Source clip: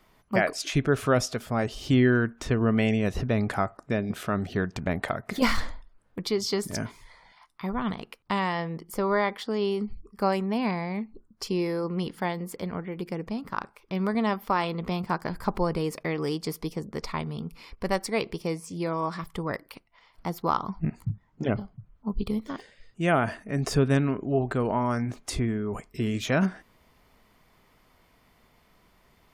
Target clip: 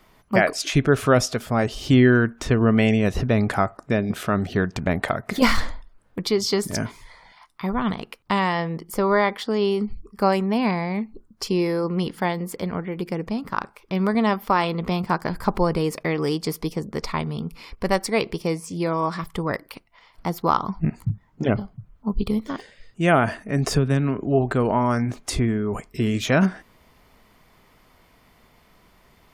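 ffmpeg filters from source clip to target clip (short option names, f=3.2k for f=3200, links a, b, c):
-filter_complex "[0:a]asettb=1/sr,asplit=3[a][b][c];[a]atrim=end=23.744[d];[b]atrim=start=23.74:end=24.27,asetpts=PTS-STARTPTS,afade=t=in:d=0.004:c=qsin,afade=t=out:st=0.526:d=0.004:c=qsin,acrossover=split=150[e][f];[f]acompressor=threshold=-25dB:ratio=6[g];[e][g]amix=inputs=2:normalize=0[h];[c]atrim=start=24.266[i];[d][h]acrossfade=d=0.004:c1=hsin:c2=qsin[j];[j][i]acrossfade=d=0.004:c1=qsin:c2=hsin,volume=5.5dB"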